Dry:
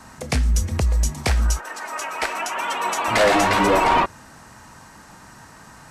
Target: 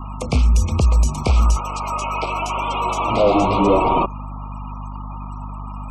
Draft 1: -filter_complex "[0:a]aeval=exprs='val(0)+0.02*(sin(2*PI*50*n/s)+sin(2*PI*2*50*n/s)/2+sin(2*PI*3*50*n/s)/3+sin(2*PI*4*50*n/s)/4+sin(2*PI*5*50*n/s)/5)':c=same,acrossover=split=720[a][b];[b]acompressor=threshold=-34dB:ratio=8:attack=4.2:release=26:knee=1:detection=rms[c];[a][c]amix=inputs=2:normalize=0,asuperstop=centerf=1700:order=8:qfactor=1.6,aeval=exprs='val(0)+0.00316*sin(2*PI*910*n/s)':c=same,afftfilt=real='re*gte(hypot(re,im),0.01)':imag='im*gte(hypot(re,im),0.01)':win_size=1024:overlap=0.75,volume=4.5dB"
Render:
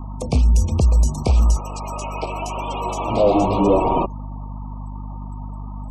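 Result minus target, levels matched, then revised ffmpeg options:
2000 Hz band -6.5 dB
-filter_complex "[0:a]aeval=exprs='val(0)+0.02*(sin(2*PI*50*n/s)+sin(2*PI*2*50*n/s)/2+sin(2*PI*3*50*n/s)/3+sin(2*PI*4*50*n/s)/4+sin(2*PI*5*50*n/s)/5)':c=same,acrossover=split=720[a][b];[b]acompressor=threshold=-34dB:ratio=8:attack=4.2:release=26:knee=1:detection=rms,equalizer=f=1.5k:t=o:w=1.6:g=13.5[c];[a][c]amix=inputs=2:normalize=0,asuperstop=centerf=1700:order=8:qfactor=1.6,aeval=exprs='val(0)+0.00316*sin(2*PI*910*n/s)':c=same,afftfilt=real='re*gte(hypot(re,im),0.01)':imag='im*gte(hypot(re,im),0.01)':win_size=1024:overlap=0.75,volume=4.5dB"

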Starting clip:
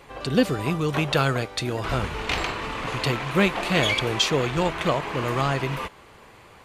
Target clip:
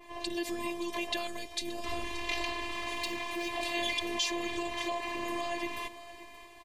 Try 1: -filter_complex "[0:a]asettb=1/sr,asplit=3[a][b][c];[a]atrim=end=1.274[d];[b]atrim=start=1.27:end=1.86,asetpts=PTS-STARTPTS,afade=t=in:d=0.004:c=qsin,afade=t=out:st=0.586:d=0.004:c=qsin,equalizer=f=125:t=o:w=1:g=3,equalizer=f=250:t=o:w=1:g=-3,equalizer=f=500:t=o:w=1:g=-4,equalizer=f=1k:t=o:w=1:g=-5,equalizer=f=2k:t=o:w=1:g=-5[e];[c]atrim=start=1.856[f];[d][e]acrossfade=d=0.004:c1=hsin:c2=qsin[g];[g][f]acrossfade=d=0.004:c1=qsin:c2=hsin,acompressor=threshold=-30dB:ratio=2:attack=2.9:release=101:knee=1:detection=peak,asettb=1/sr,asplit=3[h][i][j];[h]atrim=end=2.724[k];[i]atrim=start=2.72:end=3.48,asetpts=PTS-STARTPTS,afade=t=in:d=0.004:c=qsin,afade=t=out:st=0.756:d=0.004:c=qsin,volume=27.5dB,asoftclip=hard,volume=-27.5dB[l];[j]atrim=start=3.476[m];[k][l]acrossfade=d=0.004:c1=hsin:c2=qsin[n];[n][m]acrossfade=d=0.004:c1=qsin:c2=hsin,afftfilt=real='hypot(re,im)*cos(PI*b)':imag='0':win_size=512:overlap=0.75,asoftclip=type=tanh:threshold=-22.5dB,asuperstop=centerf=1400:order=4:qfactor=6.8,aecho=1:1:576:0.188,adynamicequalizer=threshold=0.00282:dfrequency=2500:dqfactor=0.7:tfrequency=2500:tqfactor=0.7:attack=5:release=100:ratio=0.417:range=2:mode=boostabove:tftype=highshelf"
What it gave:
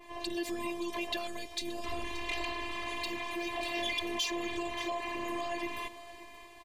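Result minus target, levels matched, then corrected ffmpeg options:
soft clip: distortion +16 dB
-filter_complex "[0:a]asettb=1/sr,asplit=3[a][b][c];[a]atrim=end=1.274[d];[b]atrim=start=1.27:end=1.86,asetpts=PTS-STARTPTS,afade=t=in:d=0.004:c=qsin,afade=t=out:st=0.586:d=0.004:c=qsin,equalizer=f=125:t=o:w=1:g=3,equalizer=f=250:t=o:w=1:g=-3,equalizer=f=500:t=o:w=1:g=-4,equalizer=f=1k:t=o:w=1:g=-5,equalizer=f=2k:t=o:w=1:g=-5[e];[c]atrim=start=1.856[f];[d][e]acrossfade=d=0.004:c1=hsin:c2=qsin[g];[g][f]acrossfade=d=0.004:c1=qsin:c2=hsin,acompressor=threshold=-30dB:ratio=2:attack=2.9:release=101:knee=1:detection=peak,asettb=1/sr,asplit=3[h][i][j];[h]atrim=end=2.724[k];[i]atrim=start=2.72:end=3.48,asetpts=PTS-STARTPTS,afade=t=in:d=0.004:c=qsin,afade=t=out:st=0.756:d=0.004:c=qsin,volume=27.5dB,asoftclip=hard,volume=-27.5dB[l];[j]atrim=start=3.476[m];[k][l]acrossfade=d=0.004:c1=hsin:c2=qsin[n];[n][m]acrossfade=d=0.004:c1=qsin:c2=hsin,afftfilt=real='hypot(re,im)*cos(PI*b)':imag='0':win_size=512:overlap=0.75,asoftclip=type=tanh:threshold=-12.5dB,asuperstop=centerf=1400:order=4:qfactor=6.8,aecho=1:1:576:0.188,adynamicequalizer=threshold=0.00282:dfrequency=2500:dqfactor=0.7:tfrequency=2500:tqfactor=0.7:attack=5:release=100:ratio=0.417:range=2:mode=boostabove:tftype=highshelf"

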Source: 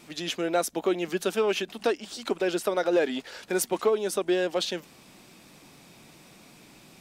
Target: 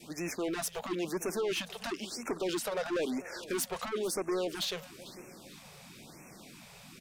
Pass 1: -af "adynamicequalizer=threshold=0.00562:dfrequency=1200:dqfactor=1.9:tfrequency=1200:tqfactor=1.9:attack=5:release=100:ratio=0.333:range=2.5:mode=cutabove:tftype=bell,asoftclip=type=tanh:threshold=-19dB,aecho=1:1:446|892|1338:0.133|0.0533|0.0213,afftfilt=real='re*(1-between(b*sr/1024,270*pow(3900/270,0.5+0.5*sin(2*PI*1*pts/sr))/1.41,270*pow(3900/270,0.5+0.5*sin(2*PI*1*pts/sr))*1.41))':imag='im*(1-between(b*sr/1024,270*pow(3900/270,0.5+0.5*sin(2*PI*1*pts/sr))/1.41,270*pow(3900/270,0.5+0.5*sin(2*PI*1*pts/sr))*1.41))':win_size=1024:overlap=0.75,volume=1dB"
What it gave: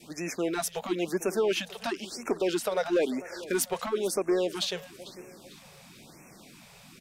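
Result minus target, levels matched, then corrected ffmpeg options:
soft clip: distortion -11 dB
-af "adynamicequalizer=threshold=0.00562:dfrequency=1200:dqfactor=1.9:tfrequency=1200:tqfactor=1.9:attack=5:release=100:ratio=0.333:range=2.5:mode=cutabove:tftype=bell,asoftclip=type=tanh:threshold=-30dB,aecho=1:1:446|892|1338:0.133|0.0533|0.0213,afftfilt=real='re*(1-between(b*sr/1024,270*pow(3900/270,0.5+0.5*sin(2*PI*1*pts/sr))/1.41,270*pow(3900/270,0.5+0.5*sin(2*PI*1*pts/sr))*1.41))':imag='im*(1-between(b*sr/1024,270*pow(3900/270,0.5+0.5*sin(2*PI*1*pts/sr))/1.41,270*pow(3900/270,0.5+0.5*sin(2*PI*1*pts/sr))*1.41))':win_size=1024:overlap=0.75,volume=1dB"

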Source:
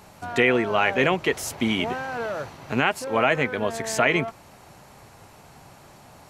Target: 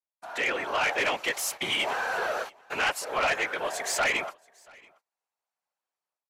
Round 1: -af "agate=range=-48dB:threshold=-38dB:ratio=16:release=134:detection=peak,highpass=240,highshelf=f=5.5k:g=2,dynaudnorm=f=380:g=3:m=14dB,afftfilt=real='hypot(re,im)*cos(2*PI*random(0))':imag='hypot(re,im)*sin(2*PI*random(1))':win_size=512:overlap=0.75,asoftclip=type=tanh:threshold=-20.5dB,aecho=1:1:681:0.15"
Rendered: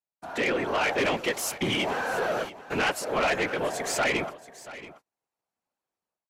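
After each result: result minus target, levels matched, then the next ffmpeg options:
250 Hz band +9.5 dB; echo-to-direct +10.5 dB
-af "agate=range=-48dB:threshold=-38dB:ratio=16:release=134:detection=peak,highpass=690,highshelf=f=5.5k:g=2,dynaudnorm=f=380:g=3:m=14dB,afftfilt=real='hypot(re,im)*cos(2*PI*random(0))':imag='hypot(re,im)*sin(2*PI*random(1))':win_size=512:overlap=0.75,asoftclip=type=tanh:threshold=-20.5dB,aecho=1:1:681:0.15"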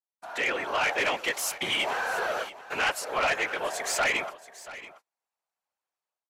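echo-to-direct +10.5 dB
-af "agate=range=-48dB:threshold=-38dB:ratio=16:release=134:detection=peak,highpass=690,highshelf=f=5.5k:g=2,dynaudnorm=f=380:g=3:m=14dB,afftfilt=real='hypot(re,im)*cos(2*PI*random(0))':imag='hypot(re,im)*sin(2*PI*random(1))':win_size=512:overlap=0.75,asoftclip=type=tanh:threshold=-20.5dB,aecho=1:1:681:0.0447"

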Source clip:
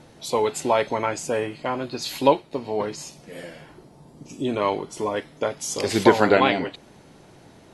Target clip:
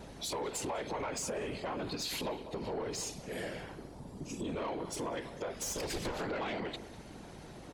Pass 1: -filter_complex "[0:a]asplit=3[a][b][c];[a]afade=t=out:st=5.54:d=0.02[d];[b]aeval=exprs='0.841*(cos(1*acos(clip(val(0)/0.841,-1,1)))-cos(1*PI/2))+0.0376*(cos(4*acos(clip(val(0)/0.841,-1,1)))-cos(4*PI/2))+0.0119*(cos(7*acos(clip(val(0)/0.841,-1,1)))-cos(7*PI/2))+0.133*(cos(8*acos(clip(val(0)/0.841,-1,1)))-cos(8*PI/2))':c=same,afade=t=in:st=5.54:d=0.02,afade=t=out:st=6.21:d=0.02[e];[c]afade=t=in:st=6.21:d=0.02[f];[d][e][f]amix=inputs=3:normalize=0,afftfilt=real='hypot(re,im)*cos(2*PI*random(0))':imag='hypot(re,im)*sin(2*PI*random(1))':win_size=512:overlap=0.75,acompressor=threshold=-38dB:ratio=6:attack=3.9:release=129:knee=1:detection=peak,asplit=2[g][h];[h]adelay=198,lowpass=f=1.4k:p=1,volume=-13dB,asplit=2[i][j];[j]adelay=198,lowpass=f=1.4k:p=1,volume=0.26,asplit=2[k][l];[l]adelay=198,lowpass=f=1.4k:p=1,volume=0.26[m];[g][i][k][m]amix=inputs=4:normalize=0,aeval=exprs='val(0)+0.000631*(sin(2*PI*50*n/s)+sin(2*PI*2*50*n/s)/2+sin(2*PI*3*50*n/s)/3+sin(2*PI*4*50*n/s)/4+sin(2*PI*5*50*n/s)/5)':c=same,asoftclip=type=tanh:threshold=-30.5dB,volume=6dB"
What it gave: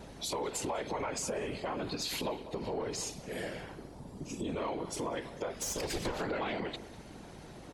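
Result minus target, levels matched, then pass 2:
soft clip: distortion -8 dB
-filter_complex "[0:a]asplit=3[a][b][c];[a]afade=t=out:st=5.54:d=0.02[d];[b]aeval=exprs='0.841*(cos(1*acos(clip(val(0)/0.841,-1,1)))-cos(1*PI/2))+0.0376*(cos(4*acos(clip(val(0)/0.841,-1,1)))-cos(4*PI/2))+0.0119*(cos(7*acos(clip(val(0)/0.841,-1,1)))-cos(7*PI/2))+0.133*(cos(8*acos(clip(val(0)/0.841,-1,1)))-cos(8*PI/2))':c=same,afade=t=in:st=5.54:d=0.02,afade=t=out:st=6.21:d=0.02[e];[c]afade=t=in:st=6.21:d=0.02[f];[d][e][f]amix=inputs=3:normalize=0,afftfilt=real='hypot(re,im)*cos(2*PI*random(0))':imag='hypot(re,im)*sin(2*PI*random(1))':win_size=512:overlap=0.75,acompressor=threshold=-38dB:ratio=6:attack=3.9:release=129:knee=1:detection=peak,asplit=2[g][h];[h]adelay=198,lowpass=f=1.4k:p=1,volume=-13dB,asplit=2[i][j];[j]adelay=198,lowpass=f=1.4k:p=1,volume=0.26,asplit=2[k][l];[l]adelay=198,lowpass=f=1.4k:p=1,volume=0.26[m];[g][i][k][m]amix=inputs=4:normalize=0,aeval=exprs='val(0)+0.000631*(sin(2*PI*50*n/s)+sin(2*PI*2*50*n/s)/2+sin(2*PI*3*50*n/s)/3+sin(2*PI*4*50*n/s)/4+sin(2*PI*5*50*n/s)/5)':c=same,asoftclip=type=tanh:threshold=-36.5dB,volume=6dB"

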